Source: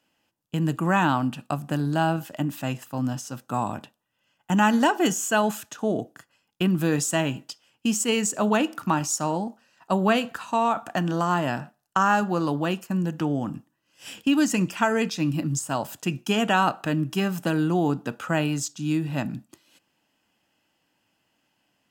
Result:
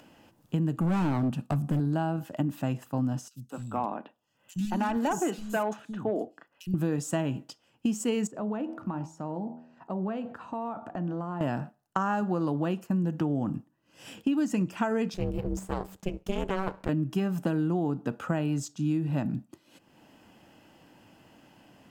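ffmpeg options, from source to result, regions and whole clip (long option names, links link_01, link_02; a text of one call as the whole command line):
ffmpeg -i in.wav -filter_complex "[0:a]asettb=1/sr,asplit=3[link_01][link_02][link_03];[link_01]atrim=end=0.784[link_04];[link_02]atrim=start=0.78:end=1.8,asetpts=PTS-STARTPTS,afade=type=in:duration=0.004:curve=qsin,afade=type=out:start_time=1.016:duration=0.004:curve=qsin,bass=frequency=250:gain=6,treble=frequency=4000:gain=5,asoftclip=type=hard:threshold=-21.5dB[link_05];[link_03]atrim=start=1.796[link_06];[link_04][link_05]acrossfade=duration=0.004:curve1=hsin:curve2=qsin[link_07];[link_07][link_06]acrossfade=duration=0.004:curve1=qsin:curve2=hsin,asettb=1/sr,asplit=3[link_08][link_09][link_10];[link_08]atrim=end=3.284[link_11];[link_09]atrim=start=3.28:end=6.74,asetpts=PTS-STARTPTS,afade=type=in:duration=0.004:curve=qsin,afade=type=out:start_time=3.456:duration=0.004:curve=qsin,lowshelf=frequency=210:gain=-8.5,asoftclip=type=hard:threshold=-18.5dB,acrossover=split=200|3500[link_12][link_13][link_14];[link_12]adelay=60[link_15];[link_13]adelay=220[link_16];[link_15][link_16][link_14]amix=inputs=3:normalize=0,atrim=end_sample=152586[link_17];[link_10]atrim=start=6.736[link_18];[link_11][link_17]acrossfade=duration=0.004:curve1=hsin:curve2=qsin[link_19];[link_19][link_18]acrossfade=duration=0.004:curve1=qsin:curve2=hsin,asettb=1/sr,asplit=3[link_20][link_21][link_22];[link_20]atrim=end=8.274[link_23];[link_21]atrim=start=8.27:end=11.41,asetpts=PTS-STARTPTS,afade=type=in:duration=0.004:curve=qsin,afade=type=out:start_time=3.136:duration=0.004:curve=qsin,bandreject=frequency=80.45:width_type=h:width=4,bandreject=frequency=160.9:width_type=h:width=4,bandreject=frequency=241.35:width_type=h:width=4,bandreject=frequency=321.8:width_type=h:width=4,bandreject=frequency=402.25:width_type=h:width=4,bandreject=frequency=482.7:width_type=h:width=4,bandreject=frequency=563.15:width_type=h:width=4,bandreject=frequency=643.6:width_type=h:width=4,bandreject=frequency=724.05:width_type=h:width=4,bandreject=frequency=804.5:width_type=h:width=4,bandreject=frequency=884.95:width_type=h:width=4,bandreject=frequency=965.4:width_type=h:width=4,acompressor=threshold=-34dB:ratio=2.5:attack=3.2:release=140:knee=1:detection=peak,lowpass=frequency=1400:poles=1[link_24];[link_22]atrim=start=11.406[link_25];[link_23][link_24]acrossfade=duration=0.004:curve1=hsin:curve2=qsin[link_26];[link_26][link_25]acrossfade=duration=0.004:curve1=qsin:curve2=hsin,asettb=1/sr,asplit=3[link_27][link_28][link_29];[link_27]atrim=end=15.144[link_30];[link_28]atrim=start=15.14:end=16.89,asetpts=PTS-STARTPTS,afade=type=in:duration=0.004:curve=qsin,afade=type=out:start_time=1.746:duration=0.004:curve=qsin,aeval=exprs='if(lt(val(0),0),0.251*val(0),val(0))':channel_layout=same,aeval=exprs='val(0)*sin(2*PI*190*n/s)':channel_layout=same[link_31];[link_29]atrim=start=16.886[link_32];[link_30][link_31]acrossfade=duration=0.004:curve1=hsin:curve2=qsin[link_33];[link_33][link_32]acrossfade=duration=0.004:curve1=qsin:curve2=hsin,acompressor=mode=upward:threshold=-40dB:ratio=2.5,tiltshelf=frequency=1200:gain=6,acompressor=threshold=-21dB:ratio=6,volume=-3dB" out.wav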